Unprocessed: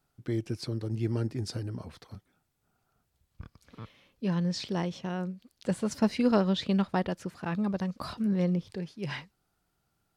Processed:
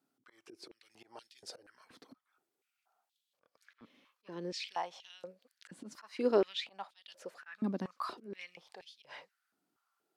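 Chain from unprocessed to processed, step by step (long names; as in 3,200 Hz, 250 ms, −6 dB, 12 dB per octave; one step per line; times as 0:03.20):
volume swells 218 ms
high-pass on a step sequencer 4.2 Hz 260–3,400 Hz
level −7.5 dB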